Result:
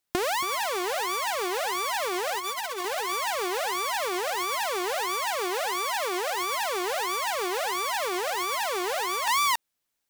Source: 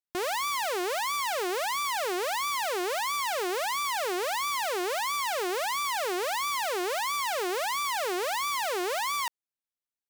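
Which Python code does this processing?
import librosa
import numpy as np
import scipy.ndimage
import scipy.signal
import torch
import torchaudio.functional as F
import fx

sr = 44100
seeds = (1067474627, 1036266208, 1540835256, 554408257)

y = fx.comb(x, sr, ms=4.6, depth=0.86, at=(2.38, 2.85))
y = y + 10.0 ** (-6.0 / 20.0) * np.pad(y, (int(276 * sr / 1000.0), 0))[:len(y)]
y = fx.over_compress(y, sr, threshold_db=-33.0, ratio=-0.5)
y = fx.highpass(y, sr, hz=fx.line((5.08, 56.0), (6.35, 210.0)), slope=24, at=(5.08, 6.35), fade=0.02)
y = F.gain(torch.from_numpy(y), 6.5).numpy()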